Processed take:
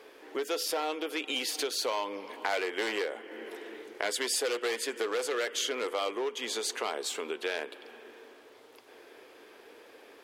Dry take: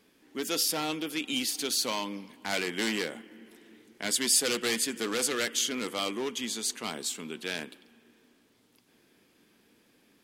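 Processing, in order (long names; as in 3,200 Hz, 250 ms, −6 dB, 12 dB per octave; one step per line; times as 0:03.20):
drawn EQ curve 110 Hz 0 dB, 160 Hz −14 dB, 430 Hz +14 dB, 8,300 Hz −5 dB
downward compressor 3 to 1, threshold −39 dBFS, peak gain reduction 16.5 dB
low-shelf EQ 330 Hz −11.5 dB
level +8 dB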